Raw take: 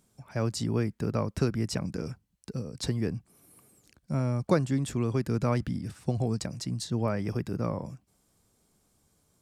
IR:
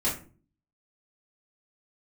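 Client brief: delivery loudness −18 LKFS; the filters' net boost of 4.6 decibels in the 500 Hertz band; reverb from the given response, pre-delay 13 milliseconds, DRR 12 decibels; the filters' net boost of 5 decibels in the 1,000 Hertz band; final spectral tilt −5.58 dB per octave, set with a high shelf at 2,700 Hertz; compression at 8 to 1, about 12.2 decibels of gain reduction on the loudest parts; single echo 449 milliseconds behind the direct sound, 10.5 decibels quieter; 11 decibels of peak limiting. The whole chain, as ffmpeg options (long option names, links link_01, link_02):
-filter_complex "[0:a]equalizer=frequency=500:width_type=o:gain=4.5,equalizer=frequency=1000:width_type=o:gain=4,highshelf=frequency=2700:gain=6.5,acompressor=threshold=-27dB:ratio=8,alimiter=level_in=3dB:limit=-24dB:level=0:latency=1,volume=-3dB,aecho=1:1:449:0.299,asplit=2[link_01][link_02];[1:a]atrim=start_sample=2205,adelay=13[link_03];[link_02][link_03]afir=irnorm=-1:irlink=0,volume=-21dB[link_04];[link_01][link_04]amix=inputs=2:normalize=0,volume=18.5dB"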